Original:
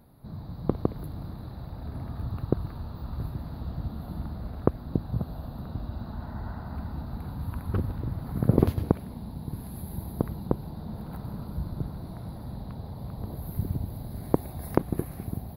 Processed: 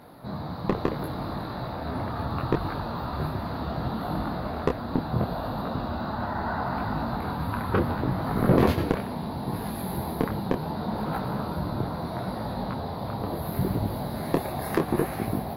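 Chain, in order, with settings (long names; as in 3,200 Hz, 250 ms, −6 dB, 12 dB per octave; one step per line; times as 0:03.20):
mid-hump overdrive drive 28 dB, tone 2,500 Hz, clips at −3 dBFS
micro pitch shift up and down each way 25 cents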